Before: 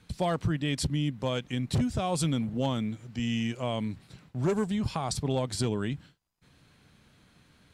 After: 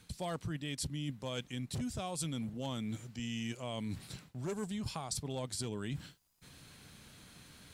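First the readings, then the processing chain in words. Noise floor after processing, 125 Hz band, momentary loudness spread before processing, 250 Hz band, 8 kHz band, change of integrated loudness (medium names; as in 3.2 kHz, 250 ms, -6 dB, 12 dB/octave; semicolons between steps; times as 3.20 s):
-63 dBFS, -10.0 dB, 6 LU, -10.0 dB, -3.5 dB, -9.5 dB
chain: treble shelf 4.7 kHz +12 dB; reverse; compression 5:1, threshold -40 dBFS, peak gain reduction 17 dB; reverse; trim +2.5 dB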